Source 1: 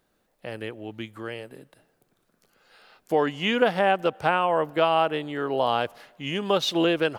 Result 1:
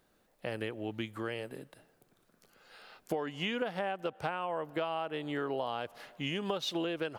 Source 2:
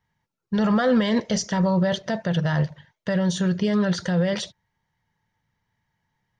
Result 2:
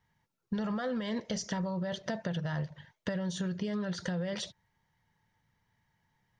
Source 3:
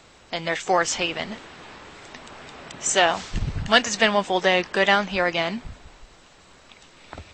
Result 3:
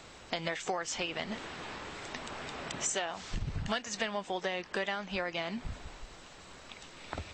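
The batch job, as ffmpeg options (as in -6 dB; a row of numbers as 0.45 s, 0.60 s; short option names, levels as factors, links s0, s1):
-af "acompressor=threshold=0.0282:ratio=10"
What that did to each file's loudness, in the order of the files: -12.0 LU, -12.5 LU, -14.5 LU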